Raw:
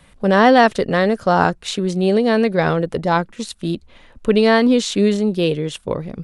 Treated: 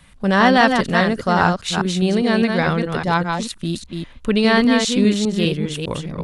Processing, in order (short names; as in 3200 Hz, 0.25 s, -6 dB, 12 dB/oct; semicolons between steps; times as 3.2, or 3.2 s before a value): reverse delay 0.202 s, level -4.5 dB; bell 490 Hz -8 dB 1.5 oct; gain +1.5 dB